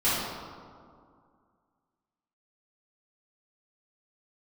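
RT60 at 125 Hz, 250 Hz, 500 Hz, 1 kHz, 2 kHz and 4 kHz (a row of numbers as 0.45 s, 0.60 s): 2.3 s, 2.5 s, 2.2 s, 2.2 s, 1.5 s, 1.0 s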